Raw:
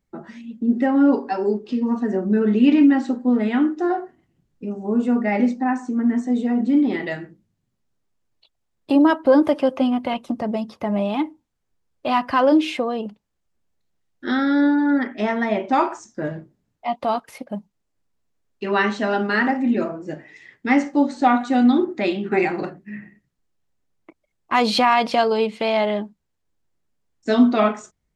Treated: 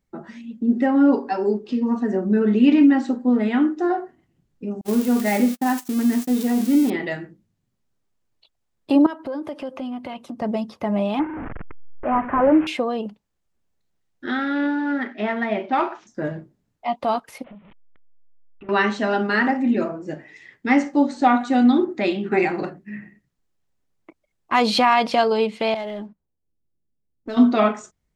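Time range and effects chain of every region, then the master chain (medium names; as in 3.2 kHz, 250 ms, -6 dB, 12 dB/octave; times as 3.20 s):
4.81–6.90 s: zero-crossing glitches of -19 dBFS + gate -28 dBFS, range -48 dB
9.06–10.42 s: high-pass 47 Hz + compression 3:1, threshold -31 dBFS
11.19–12.67 s: one-bit delta coder 16 kbps, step -24.5 dBFS + low-pass 1.8 kHz 24 dB/octave
14.26–16.07 s: CVSD coder 64 kbps + cabinet simulation 170–3700 Hz, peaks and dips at 280 Hz -5 dB, 510 Hz -5 dB, 980 Hz -4 dB
17.44–18.69 s: one-bit delta coder 16 kbps, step -42 dBFS + band-stop 1.6 kHz, Q 7.5 + compression 8:1, threshold -39 dBFS
25.74–27.37 s: level-controlled noise filter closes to 370 Hz, open at -18 dBFS + compression 2.5:1, threshold -34 dBFS + waveshaping leveller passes 1
whole clip: none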